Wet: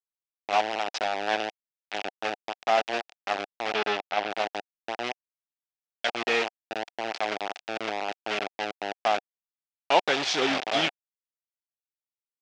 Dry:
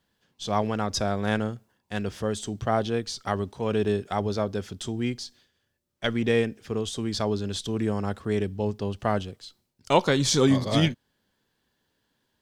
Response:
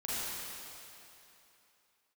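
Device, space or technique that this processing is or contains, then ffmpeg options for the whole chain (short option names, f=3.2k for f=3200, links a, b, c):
hand-held game console: -filter_complex "[0:a]acrusher=bits=3:mix=0:aa=0.000001,highpass=480,equalizer=f=490:t=q:w=4:g=-4,equalizer=f=740:t=q:w=4:g=7,equalizer=f=1.1k:t=q:w=4:g=-5,equalizer=f=2.6k:t=q:w=4:g=4,equalizer=f=4.3k:t=q:w=4:g=-3,lowpass=f=5k:w=0.5412,lowpass=f=5k:w=1.3066,asettb=1/sr,asplit=3[a][b][c];[a]atrim=end=3.744[d];[b]atrim=start=3.74:end=4.3,asetpts=PTS-STARTPTS,afade=t=in:d=0.004:c=qsin,afade=t=out:st=0.556:d=0.004:c=qsin,lowpass=5.2k[e];[c]atrim=start=4.296[f];[d][e]acrossfade=d=0.004:c1=hsin:c2=qsin[g];[g][f]acrossfade=d=0.004:c1=qsin:c2=hsin"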